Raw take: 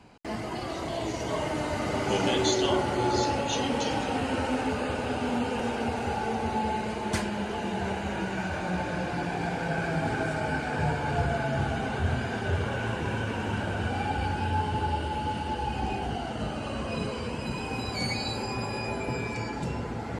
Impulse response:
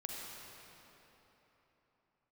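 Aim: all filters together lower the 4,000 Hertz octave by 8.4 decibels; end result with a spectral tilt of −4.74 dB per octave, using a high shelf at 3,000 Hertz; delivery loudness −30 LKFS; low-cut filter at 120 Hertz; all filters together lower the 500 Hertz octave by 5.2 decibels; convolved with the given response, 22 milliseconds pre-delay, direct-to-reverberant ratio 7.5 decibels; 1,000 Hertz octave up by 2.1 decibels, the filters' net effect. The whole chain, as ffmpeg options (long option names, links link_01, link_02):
-filter_complex "[0:a]highpass=120,equalizer=frequency=500:width_type=o:gain=-9,equalizer=frequency=1000:width_type=o:gain=7,highshelf=frequency=3000:gain=-7,equalizer=frequency=4000:width_type=o:gain=-6.5,asplit=2[link_01][link_02];[1:a]atrim=start_sample=2205,adelay=22[link_03];[link_02][link_03]afir=irnorm=-1:irlink=0,volume=-7.5dB[link_04];[link_01][link_04]amix=inputs=2:normalize=0,volume=0.5dB"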